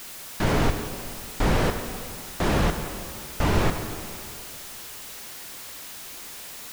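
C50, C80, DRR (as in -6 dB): 7.0 dB, 8.0 dB, 6.0 dB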